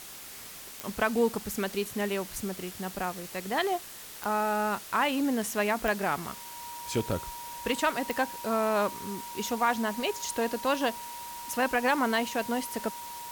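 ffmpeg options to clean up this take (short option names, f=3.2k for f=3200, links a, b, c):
-af "adeclick=t=4,bandreject=f=950:w=30,afwtdn=0.0063"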